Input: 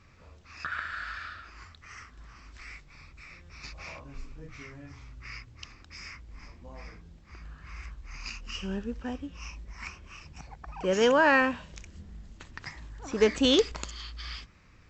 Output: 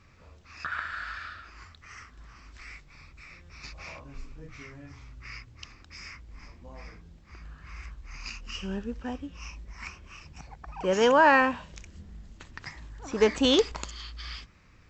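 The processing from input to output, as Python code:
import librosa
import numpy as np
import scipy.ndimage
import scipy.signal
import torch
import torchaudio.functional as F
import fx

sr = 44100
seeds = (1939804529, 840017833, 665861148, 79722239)

y = fx.dynamic_eq(x, sr, hz=900.0, q=1.9, threshold_db=-44.0, ratio=4.0, max_db=6)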